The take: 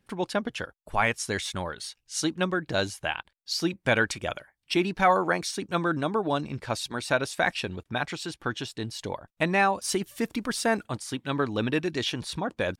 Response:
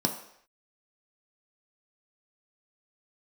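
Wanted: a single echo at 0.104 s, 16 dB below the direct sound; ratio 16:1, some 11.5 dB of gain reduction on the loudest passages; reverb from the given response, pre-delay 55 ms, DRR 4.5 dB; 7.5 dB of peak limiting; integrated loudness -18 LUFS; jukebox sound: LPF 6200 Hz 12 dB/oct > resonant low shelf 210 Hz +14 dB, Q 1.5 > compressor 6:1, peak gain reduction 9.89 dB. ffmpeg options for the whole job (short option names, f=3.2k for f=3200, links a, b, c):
-filter_complex "[0:a]acompressor=threshold=-29dB:ratio=16,alimiter=level_in=1.5dB:limit=-24dB:level=0:latency=1,volume=-1.5dB,aecho=1:1:104:0.158,asplit=2[a][b];[1:a]atrim=start_sample=2205,adelay=55[c];[b][c]afir=irnorm=-1:irlink=0,volume=-12.5dB[d];[a][d]amix=inputs=2:normalize=0,lowpass=6.2k,lowshelf=f=210:t=q:w=1.5:g=14,acompressor=threshold=-25dB:ratio=6,volume=13dB"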